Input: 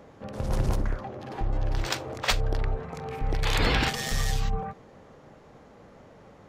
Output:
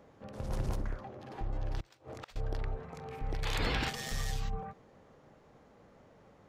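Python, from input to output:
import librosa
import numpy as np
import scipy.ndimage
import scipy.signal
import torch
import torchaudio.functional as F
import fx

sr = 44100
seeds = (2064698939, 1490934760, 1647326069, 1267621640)

y = fx.gate_flip(x, sr, shuts_db=-22.0, range_db=-25, at=(1.8, 2.36))
y = y * librosa.db_to_amplitude(-8.5)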